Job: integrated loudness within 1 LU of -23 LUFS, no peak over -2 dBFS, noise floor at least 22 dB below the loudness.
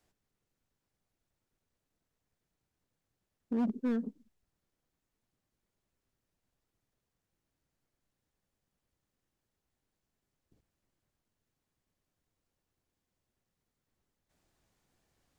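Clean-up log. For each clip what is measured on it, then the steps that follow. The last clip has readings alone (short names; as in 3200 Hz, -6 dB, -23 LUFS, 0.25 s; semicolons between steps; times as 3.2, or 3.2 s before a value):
clipped 0.3%; flat tops at -26.5 dBFS; loudness -34.0 LUFS; peak -26.5 dBFS; loudness target -23.0 LUFS
-> clip repair -26.5 dBFS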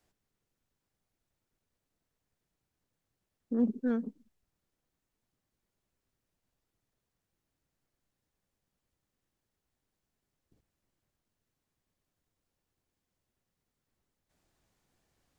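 clipped 0.0%; loudness -32.5 LUFS; peak -19.0 dBFS; loudness target -23.0 LUFS
-> gain +9.5 dB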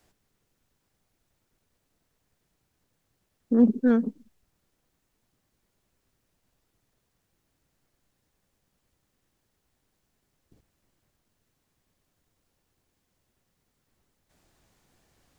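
loudness -23.5 LUFS; peak -9.5 dBFS; noise floor -77 dBFS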